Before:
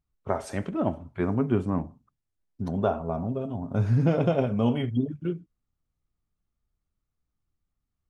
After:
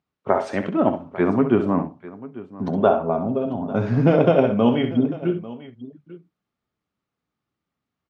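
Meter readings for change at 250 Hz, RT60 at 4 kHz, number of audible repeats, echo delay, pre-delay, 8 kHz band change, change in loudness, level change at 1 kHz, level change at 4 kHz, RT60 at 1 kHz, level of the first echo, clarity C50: +7.0 dB, no reverb audible, 2, 65 ms, no reverb audible, can't be measured, +6.5 dB, +9.0 dB, +7.0 dB, no reverb audible, −9.5 dB, no reverb audible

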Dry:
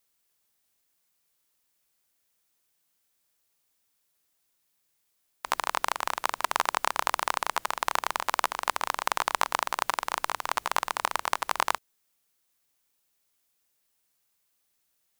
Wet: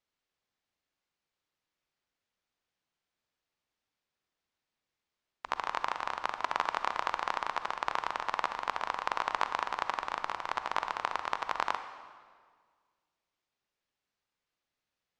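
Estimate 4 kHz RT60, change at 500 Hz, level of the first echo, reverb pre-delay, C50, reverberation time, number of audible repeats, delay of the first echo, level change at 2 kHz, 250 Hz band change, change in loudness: 1.5 s, −4.0 dB, no echo audible, 38 ms, 9.5 dB, 1.7 s, no echo audible, no echo audible, −5.0 dB, −3.5 dB, −5.0 dB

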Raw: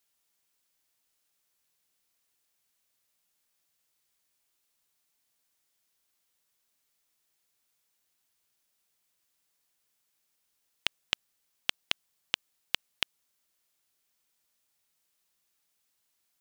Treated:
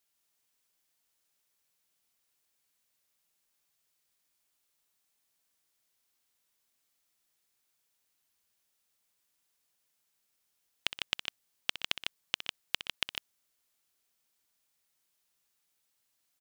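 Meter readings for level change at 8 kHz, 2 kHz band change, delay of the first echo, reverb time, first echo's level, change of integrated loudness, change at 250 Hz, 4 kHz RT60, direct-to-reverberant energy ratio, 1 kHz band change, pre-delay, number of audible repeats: −1.0 dB, −1.0 dB, 63 ms, no reverb audible, −12.0 dB, −1.5 dB, −1.0 dB, no reverb audible, no reverb audible, −1.0 dB, no reverb audible, 2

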